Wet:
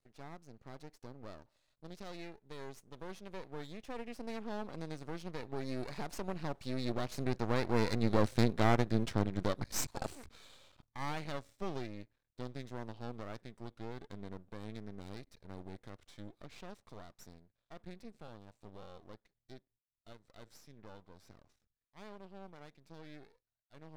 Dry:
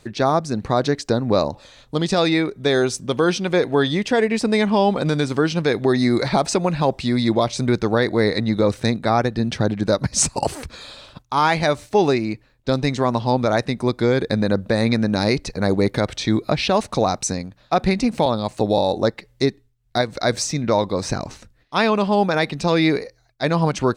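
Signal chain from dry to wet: Doppler pass-by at 8.50 s, 19 m/s, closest 13 m; half-wave rectifier; harmonic-percussive split percussive -3 dB; trim -5 dB

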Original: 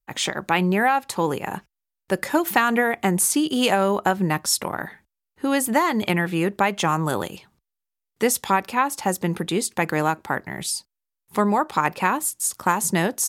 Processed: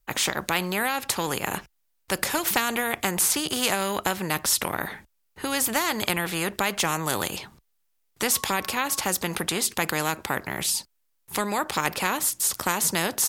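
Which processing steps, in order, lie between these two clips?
8.32–9.02 s: whistle 1.1 kHz -40 dBFS; spectrum-flattening compressor 2:1

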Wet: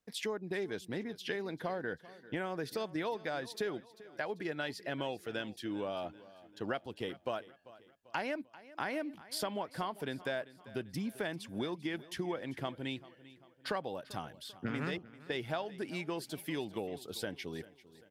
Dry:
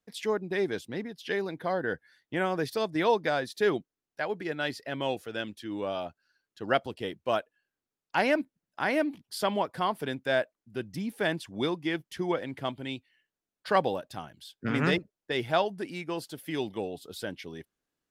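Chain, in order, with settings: compression, threshold -34 dBFS, peak gain reduction 15 dB; feedback delay 393 ms, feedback 47%, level -18.5 dB

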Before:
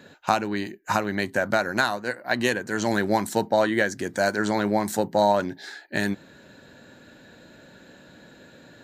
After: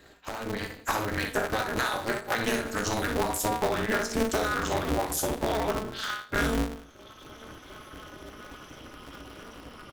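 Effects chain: gliding tape speed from 102% -> 76%; peaking EQ 12 kHz +9 dB 0.72 oct; multi-tap echo 61/164/176 ms -4/-19/-16.5 dB; Schroeder reverb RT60 0.46 s, combs from 26 ms, DRR 11.5 dB; in parallel at -4.5 dB: wavefolder -15 dBFS; on the sum: reverb removal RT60 1.5 s; de-hum 47.16 Hz, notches 8; compression 6:1, threshold -27 dBFS, peak gain reduction 13 dB; feedback comb 170 Hz, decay 0.33 s, harmonics all, mix 80%; level rider gain up to 11.5 dB; polarity switched at an audio rate 110 Hz

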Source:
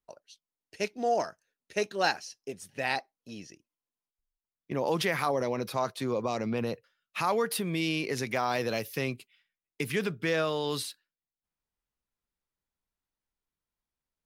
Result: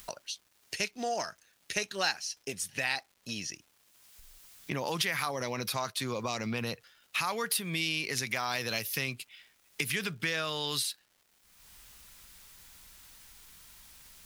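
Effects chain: amplifier tone stack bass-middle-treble 5-5-5; upward compressor, threshold -33 dBFS; crackle 490 per s -62 dBFS; trim +8 dB

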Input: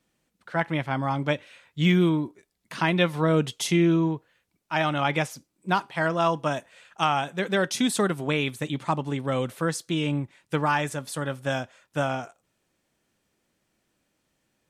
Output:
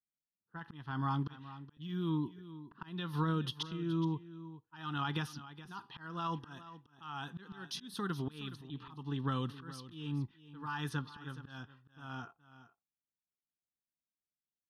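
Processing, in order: spectral noise reduction 10 dB; level-controlled noise filter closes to 490 Hz, open at -22 dBFS; gate with hold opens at -50 dBFS; band-stop 760 Hz, Q 15; peak limiter -14.5 dBFS, peak gain reduction 5.5 dB; compression 5:1, threshold -27 dBFS, peak gain reduction 8 dB; slow attack 370 ms; static phaser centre 2.2 kHz, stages 6; on a send: delay 420 ms -15 dB

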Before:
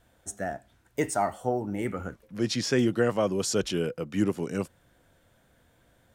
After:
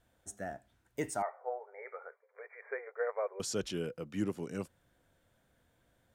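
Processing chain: 1.22–3.40 s: brick-wall FIR band-pass 400–2400 Hz; trim -8.5 dB

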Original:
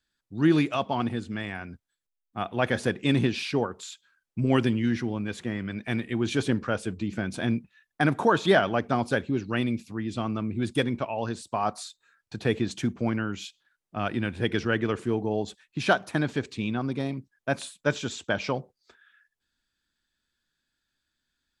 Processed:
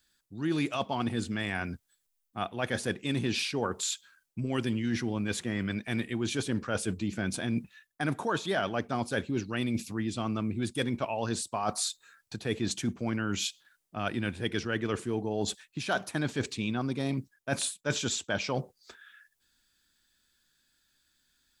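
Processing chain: treble shelf 5.1 kHz +11 dB; reverse; compression 6:1, threshold -32 dBFS, peak gain reduction 16 dB; reverse; trim +4.5 dB

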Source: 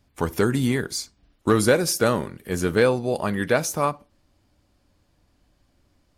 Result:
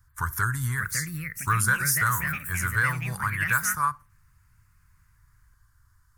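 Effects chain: FFT filter 120 Hz 0 dB, 200 Hz -23 dB, 670 Hz -30 dB, 1 kHz -1 dB, 1.6 kHz +5 dB, 2.5 kHz -18 dB, 4.2 kHz -13 dB, 6.2 kHz -3 dB, 13 kHz +5 dB; in parallel at -1 dB: compression, threshold -33 dBFS, peak gain reduction 14 dB; on the sum: ever faster or slower copies 637 ms, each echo +4 st, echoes 2, each echo -6 dB; trim -1.5 dB

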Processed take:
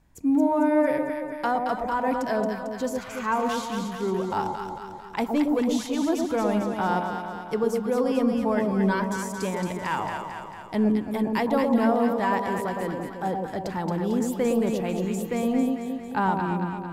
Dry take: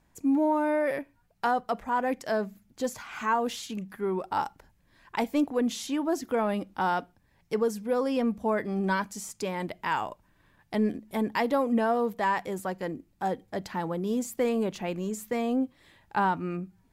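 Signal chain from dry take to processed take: bass shelf 180 Hz +7 dB; echo whose repeats swap between lows and highs 112 ms, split 920 Hz, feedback 76%, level -2.5 dB

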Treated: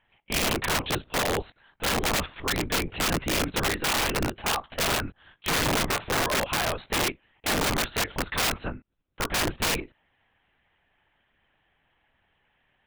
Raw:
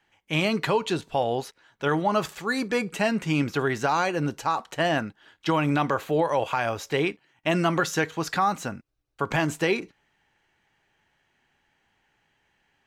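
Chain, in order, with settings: LPC vocoder at 8 kHz whisper; integer overflow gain 19.5 dB

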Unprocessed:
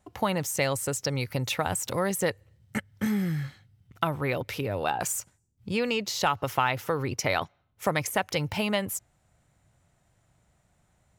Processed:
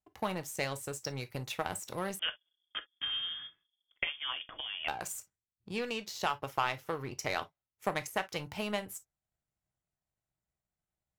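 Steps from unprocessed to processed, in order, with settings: power-law waveshaper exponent 1.4; gated-style reverb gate 80 ms falling, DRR 9 dB; 2.19–4.88 s: frequency inversion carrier 3.4 kHz; trim -5 dB

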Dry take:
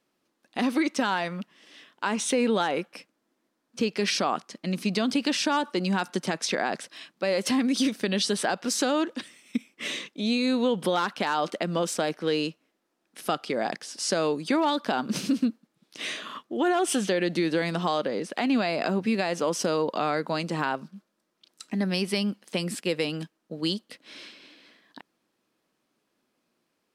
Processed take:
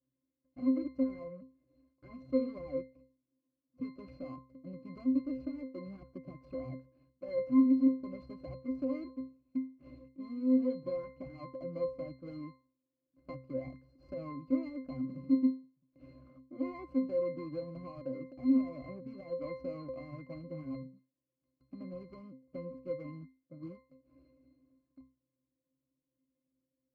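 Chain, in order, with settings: median filter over 41 samples; pitch-class resonator C, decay 0.34 s; trim +5.5 dB

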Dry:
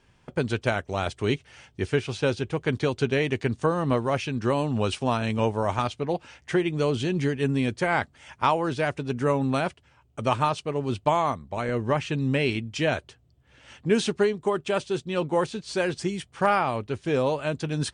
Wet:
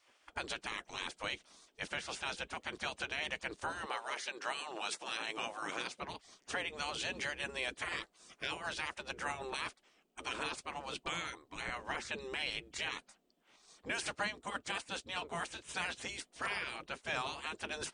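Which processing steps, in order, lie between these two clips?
spectral gate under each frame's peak -15 dB weak; 3.85–6.00 s: high-pass 470 Hz -> 130 Hz 12 dB/octave; peak limiter -24.5 dBFS, peak gain reduction 9 dB; trim -1 dB

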